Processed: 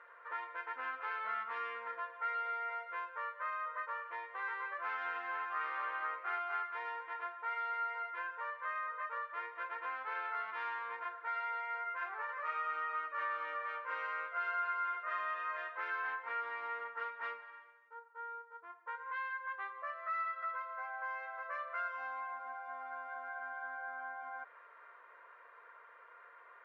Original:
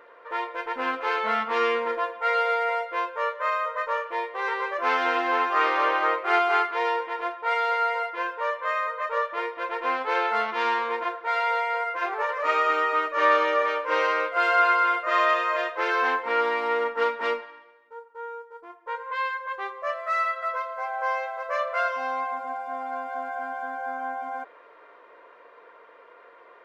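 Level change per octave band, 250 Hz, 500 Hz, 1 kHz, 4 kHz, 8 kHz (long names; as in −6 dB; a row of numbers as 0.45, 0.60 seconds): below −25 dB, −23.5 dB, −14.0 dB, −21.0 dB, can't be measured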